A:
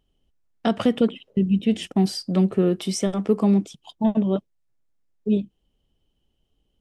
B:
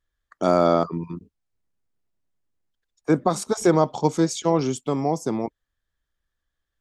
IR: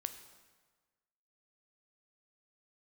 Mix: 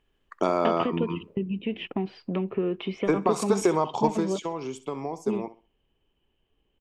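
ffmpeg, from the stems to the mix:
-filter_complex "[0:a]lowpass=f=3000:w=0.5412,lowpass=f=3000:w=1.3066,acompressor=threshold=0.0562:ratio=5,volume=0.668[s0];[1:a]acompressor=threshold=0.0631:ratio=6,volume=0.891,afade=t=out:st=4.1:d=0.23:silence=0.398107,asplit=2[s1][s2];[s2]volume=0.178,aecho=0:1:65|130|195|260:1|0.26|0.0676|0.0176[s3];[s0][s1][s3]amix=inputs=3:normalize=0,equalizer=f=400:t=o:w=0.67:g=7,equalizer=f=1000:t=o:w=0.67:g=9,equalizer=f=2500:t=o:w=0.67:g=11"

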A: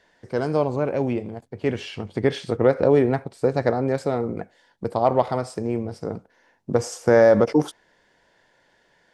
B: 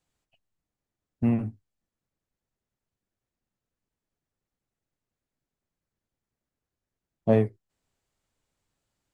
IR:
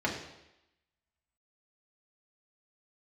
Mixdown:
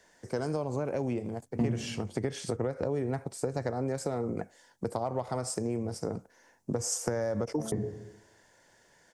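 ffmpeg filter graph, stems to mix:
-filter_complex "[0:a]acrossover=split=130[s0][s1];[s1]acompressor=threshold=0.0708:ratio=6[s2];[s0][s2]amix=inputs=2:normalize=0,highshelf=f=5000:t=q:w=1.5:g=9,volume=0.841[s3];[1:a]lowpass=1600,alimiter=limit=0.158:level=0:latency=1,aeval=exprs='val(0)*pow(10,-29*if(lt(mod(3.1*n/s,1),2*abs(3.1)/1000),1-mod(3.1*n/s,1)/(2*abs(3.1)/1000),(mod(3.1*n/s,1)-2*abs(3.1)/1000)/(1-2*abs(3.1)/1000))/20)':c=same,adelay=300,volume=0.944,asplit=2[s4][s5];[s5]volume=0.562[s6];[2:a]atrim=start_sample=2205[s7];[s6][s7]afir=irnorm=-1:irlink=0[s8];[s3][s4][s8]amix=inputs=3:normalize=0,acompressor=threshold=0.0316:ratio=2"

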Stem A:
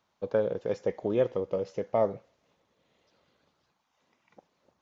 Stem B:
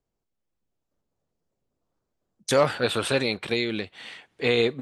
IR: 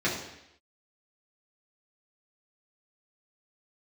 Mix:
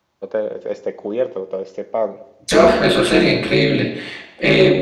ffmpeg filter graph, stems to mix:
-filter_complex "[0:a]highpass=230,volume=0.944,asplit=2[s0][s1];[s1]volume=0.0668[s2];[1:a]aeval=exprs='val(0)*sin(2*PI*89*n/s)':c=same,volume=0.891,asplit=2[s3][s4];[s4]volume=0.596[s5];[2:a]atrim=start_sample=2205[s6];[s2][s5]amix=inputs=2:normalize=0[s7];[s7][s6]afir=irnorm=-1:irlink=0[s8];[s0][s3][s8]amix=inputs=3:normalize=0,acontrast=43"

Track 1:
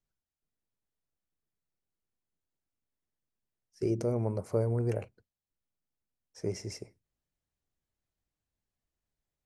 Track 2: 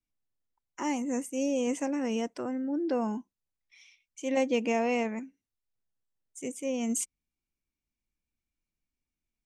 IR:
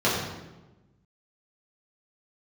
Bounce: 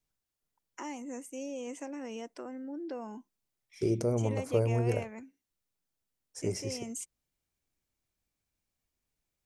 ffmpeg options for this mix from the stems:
-filter_complex "[0:a]bass=f=250:g=0,treble=f=4000:g=4,volume=1.12[s0];[1:a]highpass=250,acompressor=threshold=0.00631:ratio=2,volume=1[s1];[s0][s1]amix=inputs=2:normalize=0"

